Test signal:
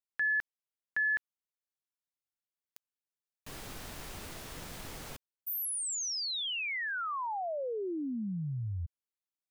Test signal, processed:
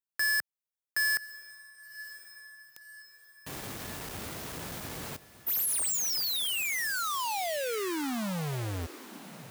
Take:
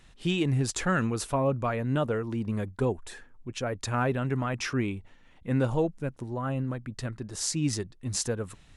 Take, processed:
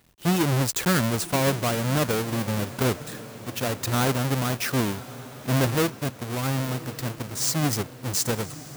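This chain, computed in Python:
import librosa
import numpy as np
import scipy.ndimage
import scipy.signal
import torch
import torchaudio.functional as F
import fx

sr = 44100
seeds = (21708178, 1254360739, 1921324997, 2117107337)

y = fx.halfwave_hold(x, sr)
y = scipy.signal.sosfilt(scipy.signal.butter(2, 75.0, 'highpass', fs=sr, output='sos'), y)
y = fx.high_shelf(y, sr, hz=8600.0, db=7.5)
y = fx.leveller(y, sr, passes=1)
y = fx.echo_diffused(y, sr, ms=1063, feedback_pct=51, wet_db=-15.5)
y = F.gain(torch.from_numpy(y), -4.0).numpy()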